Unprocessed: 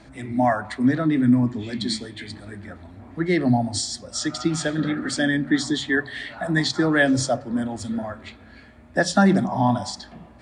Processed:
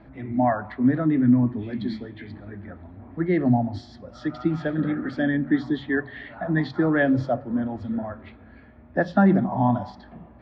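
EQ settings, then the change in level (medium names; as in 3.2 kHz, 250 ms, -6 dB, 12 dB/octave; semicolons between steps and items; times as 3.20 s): low-pass 1.8 kHz 6 dB/octave; distance through air 300 m; 0.0 dB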